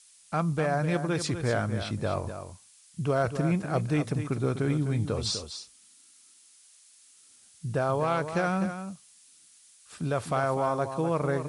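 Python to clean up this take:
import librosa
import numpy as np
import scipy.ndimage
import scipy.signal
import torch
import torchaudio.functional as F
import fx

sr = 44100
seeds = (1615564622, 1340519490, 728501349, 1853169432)

y = fx.fix_declip(x, sr, threshold_db=-16.5)
y = fx.noise_reduce(y, sr, print_start_s=6.13, print_end_s=6.63, reduce_db=17.0)
y = fx.fix_echo_inverse(y, sr, delay_ms=250, level_db=-9.5)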